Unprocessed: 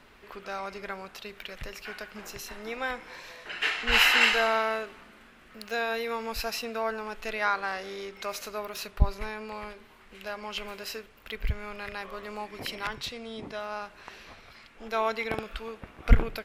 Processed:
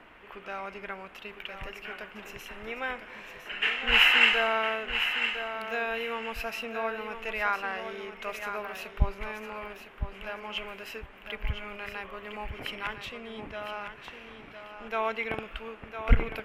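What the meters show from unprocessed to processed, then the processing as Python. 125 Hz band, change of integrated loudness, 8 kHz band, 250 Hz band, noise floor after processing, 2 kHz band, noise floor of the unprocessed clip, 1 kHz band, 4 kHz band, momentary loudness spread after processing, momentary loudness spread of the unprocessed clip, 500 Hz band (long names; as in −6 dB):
−2.0 dB, +0.5 dB, −9.5 dB, −2.0 dB, −49 dBFS, +1.0 dB, −55 dBFS, −1.5 dB, +1.0 dB, 16 LU, 17 LU, −1.5 dB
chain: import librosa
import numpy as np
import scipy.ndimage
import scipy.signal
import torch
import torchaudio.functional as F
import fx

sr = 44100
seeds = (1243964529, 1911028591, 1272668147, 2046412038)

y = fx.high_shelf_res(x, sr, hz=3500.0, db=-6.0, q=3.0)
y = fx.dmg_noise_band(y, sr, seeds[0], low_hz=190.0, high_hz=2100.0, level_db=-54.0)
y = fx.echo_feedback(y, sr, ms=1007, feedback_pct=22, wet_db=-8.5)
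y = F.gain(torch.from_numpy(y), -2.5).numpy()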